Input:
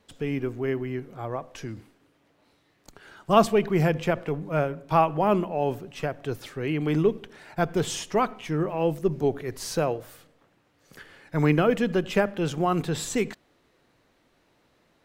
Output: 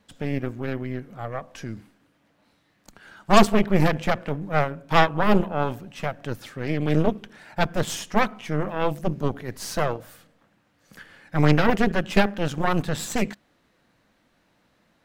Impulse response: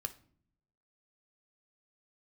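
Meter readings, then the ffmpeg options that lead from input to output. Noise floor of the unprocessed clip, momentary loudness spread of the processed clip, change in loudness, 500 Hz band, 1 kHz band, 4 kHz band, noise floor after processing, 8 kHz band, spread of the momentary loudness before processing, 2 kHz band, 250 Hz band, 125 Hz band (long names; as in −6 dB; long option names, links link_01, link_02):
−66 dBFS, 14 LU, +1.5 dB, −0.5 dB, +2.5 dB, +4.5 dB, −66 dBFS, +1.0 dB, 12 LU, +6.0 dB, +2.5 dB, +2.5 dB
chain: -af "equalizer=frequency=200:width_type=o:width=0.33:gain=7,equalizer=frequency=400:width_type=o:width=0.33:gain=-7,equalizer=frequency=1600:width_type=o:width=0.33:gain=3,aeval=exprs='0.531*(cos(1*acos(clip(val(0)/0.531,-1,1)))-cos(1*PI/2))+0.168*(cos(6*acos(clip(val(0)/0.531,-1,1)))-cos(6*PI/2))':channel_layout=same"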